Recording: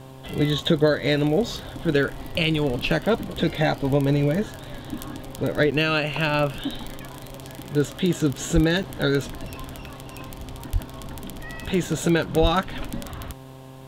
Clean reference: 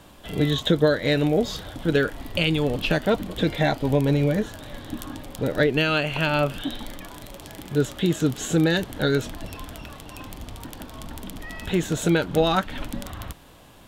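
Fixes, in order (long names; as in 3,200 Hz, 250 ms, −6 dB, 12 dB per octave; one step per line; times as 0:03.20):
hum removal 131.9 Hz, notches 8
high-pass at the plosives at 0:08.54/0:10.72/0:12.41
repair the gap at 0:05.71/0:06.88/0:08.33/0:08.83, 6.8 ms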